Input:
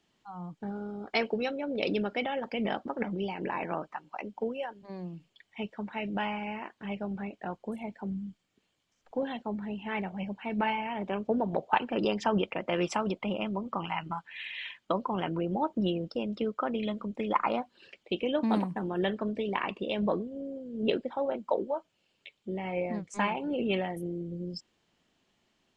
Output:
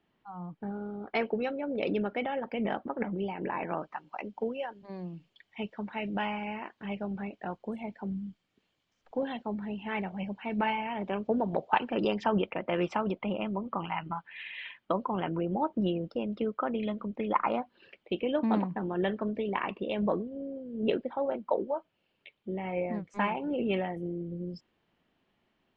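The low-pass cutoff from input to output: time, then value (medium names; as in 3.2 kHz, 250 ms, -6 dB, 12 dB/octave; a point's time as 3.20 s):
3.54 s 2.3 kHz
3.95 s 4.9 kHz
11.85 s 4.9 kHz
12.51 s 2.7 kHz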